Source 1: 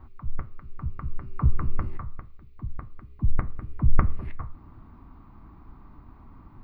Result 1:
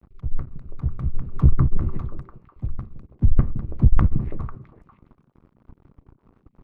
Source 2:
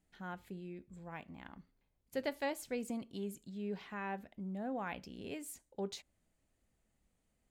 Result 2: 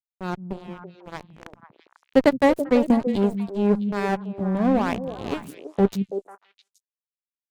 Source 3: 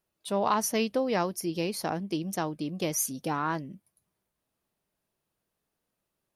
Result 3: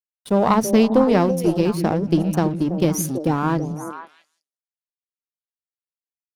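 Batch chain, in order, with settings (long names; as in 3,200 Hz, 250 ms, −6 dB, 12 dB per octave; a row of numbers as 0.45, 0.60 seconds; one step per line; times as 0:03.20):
dead-zone distortion −43 dBFS
tilt shelving filter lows +6.5 dB, about 720 Hz
on a send: echo through a band-pass that steps 165 ms, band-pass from 170 Hz, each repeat 1.4 octaves, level −4 dB
on the sum: tube saturation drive 11 dB, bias 0.65
normalise the peak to −3 dBFS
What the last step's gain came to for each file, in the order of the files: +5.5, +24.5, +13.0 decibels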